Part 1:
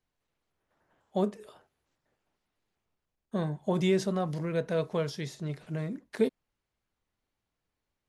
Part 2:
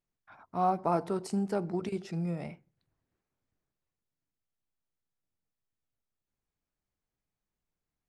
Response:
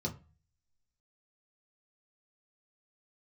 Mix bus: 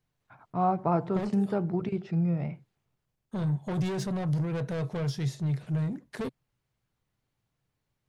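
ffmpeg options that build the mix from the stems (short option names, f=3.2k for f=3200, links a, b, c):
-filter_complex "[0:a]asoftclip=type=tanh:threshold=-32.5dB,volume=1.5dB[a];[1:a]lowpass=3k,agate=range=-26dB:threshold=-55dB:ratio=16:detection=peak,volume=1dB[b];[a][b]amix=inputs=2:normalize=0,equalizer=f=130:w=2.1:g=13.5"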